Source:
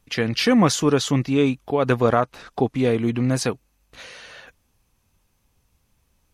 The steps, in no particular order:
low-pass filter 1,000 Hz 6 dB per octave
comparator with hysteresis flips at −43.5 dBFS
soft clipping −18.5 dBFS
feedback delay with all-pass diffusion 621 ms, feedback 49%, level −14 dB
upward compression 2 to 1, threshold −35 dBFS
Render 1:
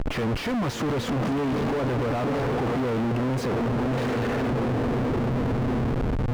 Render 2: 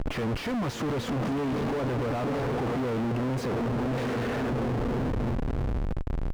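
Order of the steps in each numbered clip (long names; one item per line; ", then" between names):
feedback delay with all-pass diffusion, then upward compression, then comparator with hysteresis, then low-pass filter, then soft clipping
upward compression, then feedback delay with all-pass diffusion, then soft clipping, then comparator with hysteresis, then low-pass filter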